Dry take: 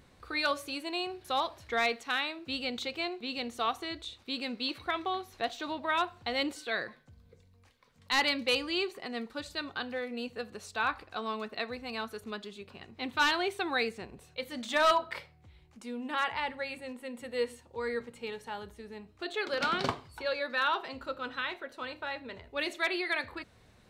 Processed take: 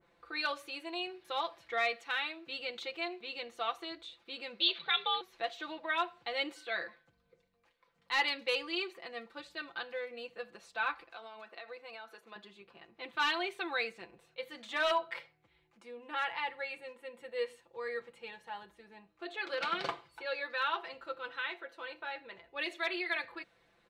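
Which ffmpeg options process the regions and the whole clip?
-filter_complex "[0:a]asettb=1/sr,asplit=3[a][b][c];[a]atrim=end=4.604[d];[b]atrim=start=4.6:end=5.21,asetpts=PTS-STARTPTS,afade=t=in:d=0.004:c=qsin,afade=t=out:st=0.606:d=0.004:c=qsin,lowpass=f=3.5k:t=q:w=8.2,afreqshift=81[e];[c]atrim=start=5.206[f];[d][e]acrossfade=d=0.004:c1=hsin:c2=qsin[g];[g][f]acrossfade=d=0.004:c1=qsin:c2=hsin,asettb=1/sr,asplit=3[h][i][j];[h]atrim=end=11.114[k];[i]atrim=start=11.11:end=12.36,asetpts=PTS-STARTPTS,afade=t=in:d=0.004:c=qsin,afade=t=out:st=1.246:d=0.004:c=qsin,highpass=330,acompressor=threshold=-36dB:ratio=12:attack=3.2:release=140:knee=1:detection=peak[l];[j]atrim=start=12.356[m];[k][l]acrossfade=d=0.004:c1=hsin:c2=qsin[n];[n][m]acrossfade=d=0.004:c1=qsin:c2=hsin,bass=f=250:g=-12,treble=f=4k:g=-12,aecho=1:1:5.9:0.75,adynamicequalizer=threshold=0.00891:dfrequency=1800:dqfactor=0.7:tfrequency=1800:tqfactor=0.7:attack=5:release=100:ratio=0.375:range=3:mode=boostabove:tftype=highshelf,volume=-6.5dB"

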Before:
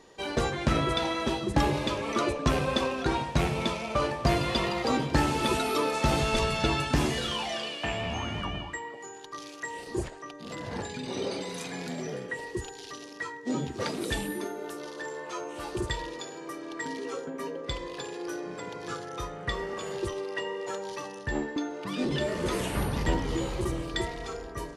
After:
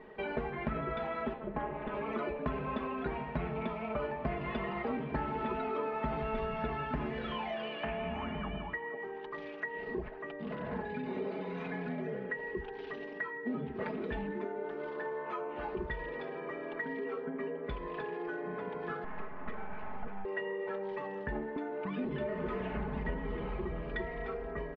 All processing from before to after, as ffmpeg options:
-filter_complex "[0:a]asettb=1/sr,asplit=3[a][b][c];[a]atrim=end=1.334[d];[b]atrim=start=1.33:end=1.94,asetpts=PTS-STARTPTS,afade=t=in:d=0.004:c=qsin,afade=t=out:st=0.606:d=0.004:c=qsin,highpass=150,lowpass=2.8k,tremolo=f=240:d=0.889[e];[c]atrim=start=1.936[f];[d][e]acrossfade=d=0.004:c1=hsin:c2=qsin[g];[g][f]acrossfade=d=0.004:c1=qsin:c2=hsin,asettb=1/sr,asplit=3[h][i][j];[h]atrim=end=19.044[k];[i]atrim=start=19.04:end=20.25,asetpts=PTS-STARTPTS,afade=t=in:d=0.004:c=qsin,afade=t=out:st=1.206:d=0.004:c=qsin,lowpass=f=1.2k:p=1,aeval=exprs='abs(val(0))':c=same[l];[j]atrim=start=20.246[m];[k][l]acrossfade=d=0.004:c1=hsin:c2=qsin[n];[n][m]acrossfade=d=0.004:c1=qsin:c2=hsin,lowpass=f=2.3k:w=0.5412,lowpass=f=2.3k:w=1.3066,aecho=1:1:4.7:0.81,acompressor=threshold=-38dB:ratio=3,volume=1.5dB"

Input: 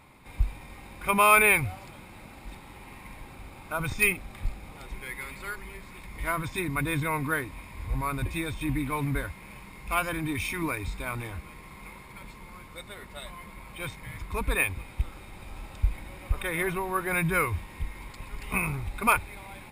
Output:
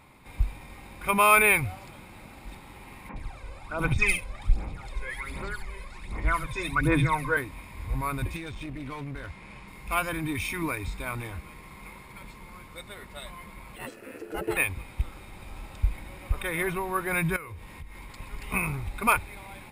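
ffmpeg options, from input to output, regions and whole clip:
-filter_complex "[0:a]asettb=1/sr,asplit=3[a][b][c];[a]atrim=end=3.094[d];[b]atrim=start=3.09:end=7.37,asetpts=PTS-STARTPTS,afade=t=in:d=0.004:c=qsin,afade=t=out:st=4.276:d=0.004:c=qsin,aphaser=in_gain=1:out_gain=1:delay=2:decay=0.67:speed=1.3:type=sinusoidal,lowpass=8.3k,acrossover=split=180|2700[e][f][g];[e]adelay=40[h];[g]adelay=70[i];[h][f][i]amix=inputs=3:normalize=0,atrim=end_sample=188748[j];[c]atrim=start=7.366[k];[d][j]acrossfade=d=0.004:c1=hsin:c2=qsin[l];[l][k]acrossfade=d=0.004:c1=qsin:c2=hsin,asettb=1/sr,asplit=3[m][n][o];[m]atrim=end=8.364[p];[n]atrim=start=8.36:end=9.68,asetpts=PTS-STARTPTS,afade=t=in:d=0.004:c=qsin,afade=t=out:st=1.316:d=0.004:c=qsin,lowpass=7k,acompressor=threshold=-32dB:ratio=6:attack=3.2:release=140:knee=1:detection=peak,aeval=exprs='clip(val(0),-1,0.0141)':c=same[q];[o]atrim=start=9.676[r];[p][q]acrossfade=d=0.004:c1=hsin:c2=qsin[s];[s][r]acrossfade=d=0.004:c1=qsin:c2=hsin,asettb=1/sr,asplit=3[t][u][v];[t]atrim=end=13.764[w];[u]atrim=start=13.76:end=14.57,asetpts=PTS-STARTPTS,afade=t=in:d=0.004:c=qsin,afade=t=out:st=0.806:d=0.004:c=qsin,equalizer=f=3.3k:w=3:g=-9,aeval=exprs='val(0)*sin(2*PI*390*n/s)':c=same[x];[v]atrim=start=14.566[y];[w][x]acrossfade=d=0.004:c1=hsin:c2=qsin[z];[z][y]acrossfade=d=0.004:c1=qsin:c2=hsin,asettb=1/sr,asplit=3[aa][ab][ac];[aa]atrim=end=17.364[ad];[ab]atrim=start=17.36:end=18.2,asetpts=PTS-STARTPTS,afade=t=in:d=0.004:c=qsin,afade=t=out:st=0.836:d=0.004:c=qsin,bandreject=f=61.85:t=h:w=4,bandreject=f=123.7:t=h:w=4,bandreject=f=185.55:t=h:w=4,bandreject=f=247.4:t=h:w=4,bandreject=f=309.25:t=h:w=4,bandreject=f=371.1:t=h:w=4,bandreject=f=432.95:t=h:w=4,bandreject=f=494.8:t=h:w=4,bandreject=f=556.65:t=h:w=4,bandreject=f=618.5:t=h:w=4,bandreject=f=680.35:t=h:w=4,bandreject=f=742.2:t=h:w=4,bandreject=f=804.05:t=h:w=4,bandreject=f=865.9:t=h:w=4,bandreject=f=927.75:t=h:w=4,bandreject=f=989.6:t=h:w=4,acompressor=threshold=-38dB:ratio=6:attack=3.2:release=140:knee=1:detection=peak[ae];[ac]atrim=start=18.196[af];[ad][ae]acrossfade=d=0.004:c1=hsin:c2=qsin[ag];[ag][af]acrossfade=d=0.004:c1=qsin:c2=hsin"

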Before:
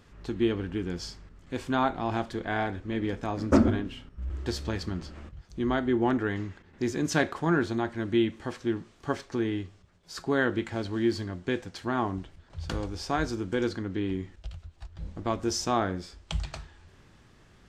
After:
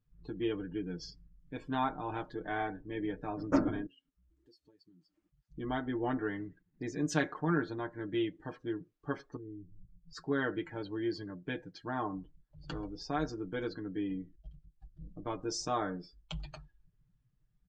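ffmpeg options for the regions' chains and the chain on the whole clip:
-filter_complex "[0:a]asettb=1/sr,asplit=3[a][b][c];[a]atrim=end=3.864[d];[b]atrim=start=3.86:end=5.49,asetpts=PTS-STARTPTS,afade=t=in:d=0.004:c=qsin,afade=t=out:st=1.626:d=0.004:c=qsin,aemphasis=mode=production:type=bsi,acompressor=threshold=-51dB:ratio=4:attack=3.2:release=140:knee=1:detection=peak[e];[c]atrim=start=5.486[f];[d][e]acrossfade=d=0.004:c1=hsin:c2=qsin[g];[g][f]acrossfade=d=0.004:c1=qsin:c2=hsin,asettb=1/sr,asplit=3[h][i][j];[h]atrim=end=9.364[k];[i]atrim=start=9.36:end=10.13,asetpts=PTS-STARTPTS,afade=t=in:d=0.004:c=qsin,afade=t=out:st=0.766:d=0.004:c=qsin,aemphasis=mode=reproduction:type=riaa,acompressor=threshold=-39dB:ratio=4:attack=3.2:release=140:knee=1:detection=peak[l];[j]atrim=start=10.126[m];[k][l]acrossfade=d=0.004:c1=hsin:c2=qsin[n];[n][m]acrossfade=d=0.004:c1=qsin:c2=hsin,afftdn=nr=27:nf=-43,equalizer=f=87:w=2.9:g=-9.5,aecho=1:1:6.6:0.84,volume=-8.5dB"

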